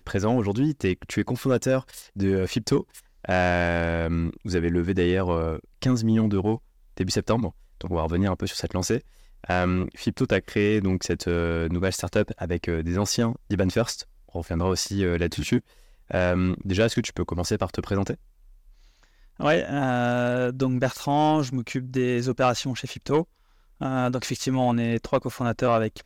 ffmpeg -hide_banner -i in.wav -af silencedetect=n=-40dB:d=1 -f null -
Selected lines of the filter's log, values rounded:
silence_start: 18.15
silence_end: 19.39 | silence_duration: 1.25